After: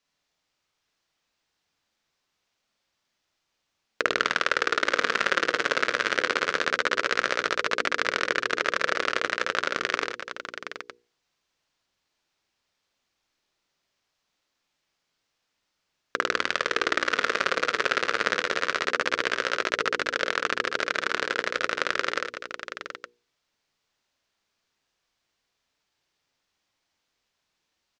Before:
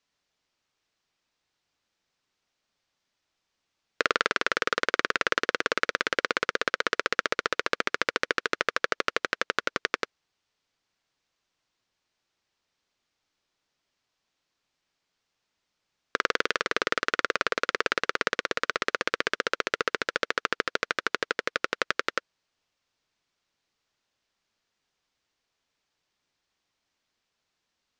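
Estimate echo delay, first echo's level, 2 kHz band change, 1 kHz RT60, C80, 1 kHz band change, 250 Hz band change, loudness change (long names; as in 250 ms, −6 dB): 50 ms, −3.0 dB, +2.5 dB, no reverb audible, no reverb audible, +2.5 dB, +1.5 dB, +2.5 dB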